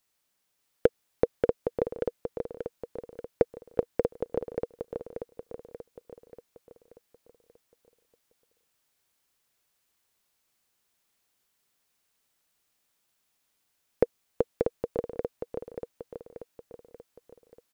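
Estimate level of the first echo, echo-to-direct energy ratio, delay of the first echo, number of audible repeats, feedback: −4.5 dB, −3.0 dB, 584 ms, 6, 51%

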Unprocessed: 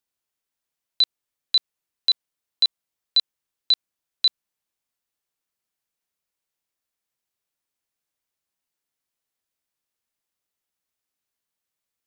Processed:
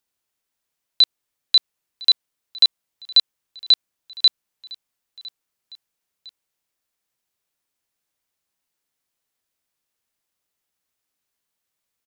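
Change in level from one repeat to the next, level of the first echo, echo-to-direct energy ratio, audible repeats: −5.5 dB, −23.0 dB, −22.0 dB, 2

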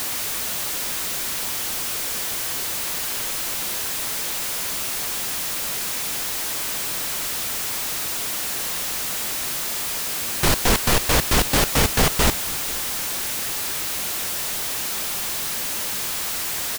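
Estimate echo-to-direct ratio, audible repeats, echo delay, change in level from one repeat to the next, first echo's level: −21.5 dB, 1, 490 ms, −13.0 dB, −21.5 dB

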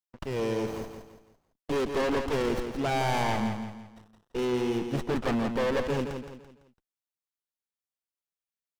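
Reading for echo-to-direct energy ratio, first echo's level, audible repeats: −6.5 dB, −7.0 dB, 4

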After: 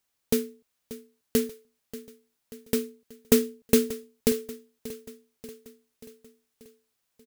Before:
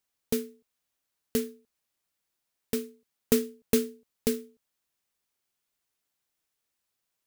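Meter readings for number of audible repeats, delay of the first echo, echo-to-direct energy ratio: 4, 585 ms, −14.5 dB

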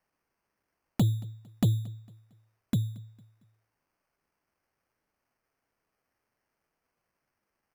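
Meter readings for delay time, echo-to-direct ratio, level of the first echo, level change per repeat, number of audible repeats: 227 ms, −22.5 dB, −23.0 dB, −8.0 dB, 2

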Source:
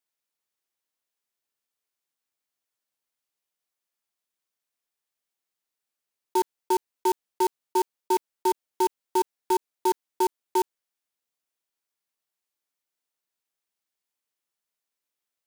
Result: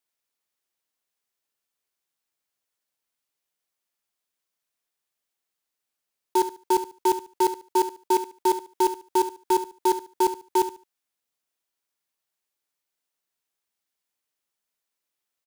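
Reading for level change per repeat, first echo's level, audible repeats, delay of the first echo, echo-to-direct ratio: −13.0 dB, −12.0 dB, 2, 72 ms, −12.0 dB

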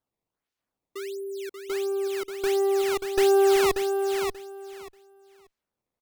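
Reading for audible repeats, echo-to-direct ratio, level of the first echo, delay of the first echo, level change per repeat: 3, −6.0 dB, −6.0 dB, 585 ms, −14.5 dB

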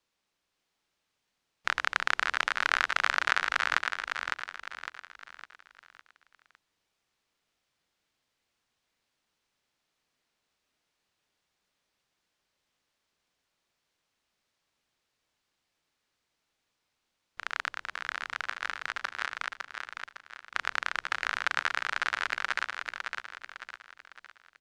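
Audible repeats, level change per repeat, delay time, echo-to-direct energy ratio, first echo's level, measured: 4, −7.5 dB, 557 ms, −4.0 dB, −5.0 dB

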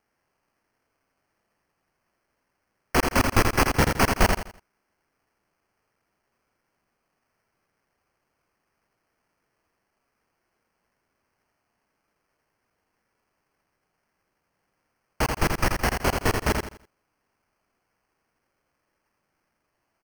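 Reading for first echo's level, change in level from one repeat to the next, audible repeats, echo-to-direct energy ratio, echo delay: −5.0 dB, −10.0 dB, 3, −4.5 dB, 83 ms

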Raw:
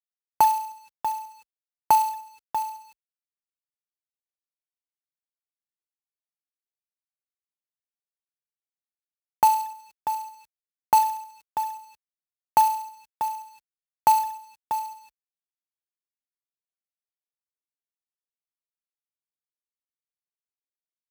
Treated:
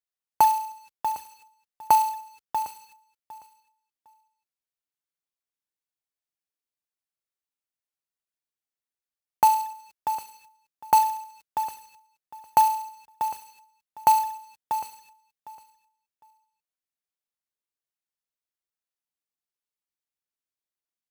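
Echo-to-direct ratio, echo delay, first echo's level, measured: −17.0 dB, 756 ms, −17.0 dB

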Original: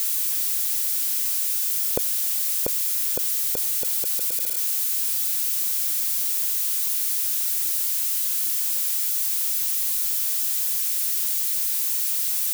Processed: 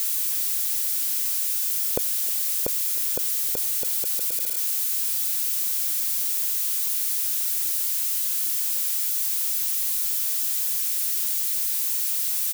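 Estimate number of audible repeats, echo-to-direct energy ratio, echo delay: 2, −20.5 dB, 312 ms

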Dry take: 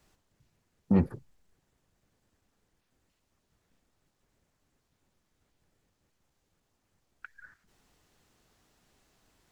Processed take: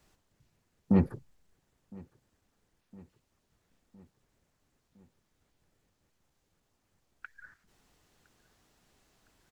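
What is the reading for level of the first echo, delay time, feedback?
−24.0 dB, 1,011 ms, 58%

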